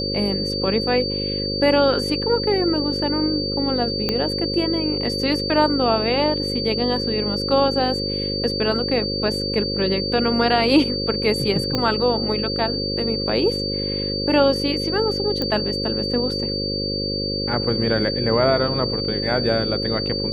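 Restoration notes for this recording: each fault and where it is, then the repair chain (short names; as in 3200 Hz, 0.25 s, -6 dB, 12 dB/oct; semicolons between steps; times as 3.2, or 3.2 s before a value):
buzz 50 Hz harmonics 11 -27 dBFS
tone 4600 Hz -25 dBFS
4.09 pop -8 dBFS
11.75 pop -8 dBFS
15.42 pop -11 dBFS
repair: de-click; de-hum 50 Hz, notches 11; notch 4600 Hz, Q 30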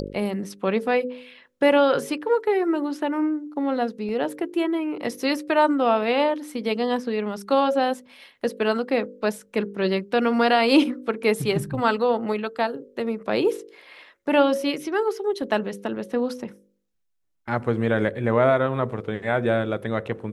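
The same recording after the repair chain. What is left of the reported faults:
4.09 pop
11.75 pop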